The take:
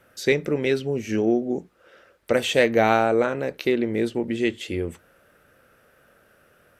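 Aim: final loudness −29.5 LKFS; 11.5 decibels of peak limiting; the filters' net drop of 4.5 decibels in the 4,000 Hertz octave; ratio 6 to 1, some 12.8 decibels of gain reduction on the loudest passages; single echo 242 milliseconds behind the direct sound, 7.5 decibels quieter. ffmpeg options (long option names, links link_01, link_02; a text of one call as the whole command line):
ffmpeg -i in.wav -af "equalizer=frequency=4000:width_type=o:gain=-6,acompressor=threshold=-28dB:ratio=6,alimiter=level_in=1.5dB:limit=-24dB:level=0:latency=1,volume=-1.5dB,aecho=1:1:242:0.422,volume=6.5dB" out.wav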